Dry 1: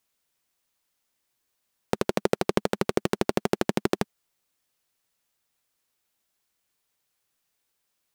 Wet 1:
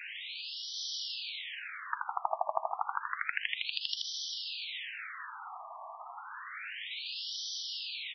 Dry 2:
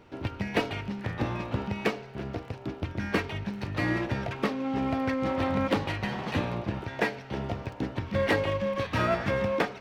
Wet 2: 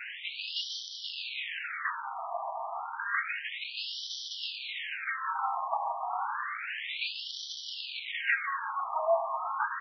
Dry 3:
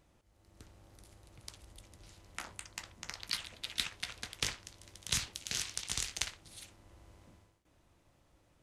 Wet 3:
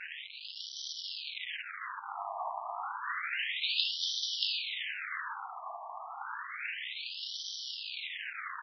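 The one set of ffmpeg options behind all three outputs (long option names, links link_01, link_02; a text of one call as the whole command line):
ffmpeg -i in.wav -filter_complex "[0:a]aeval=exprs='val(0)+0.5*0.0562*sgn(val(0))':channel_layout=same,asplit=2[link_01][link_02];[link_02]aecho=0:1:380|760|1140|1520:0.282|0.107|0.0407|0.0155[link_03];[link_01][link_03]amix=inputs=2:normalize=0,acrusher=bits=2:mode=log:mix=0:aa=0.000001,afftfilt=real='re*between(b*sr/1024,850*pow(4300/850,0.5+0.5*sin(2*PI*0.3*pts/sr))/1.41,850*pow(4300/850,0.5+0.5*sin(2*PI*0.3*pts/sr))*1.41)':imag='im*between(b*sr/1024,850*pow(4300/850,0.5+0.5*sin(2*PI*0.3*pts/sr))/1.41,850*pow(4300/850,0.5+0.5*sin(2*PI*0.3*pts/sr))*1.41)':win_size=1024:overlap=0.75" out.wav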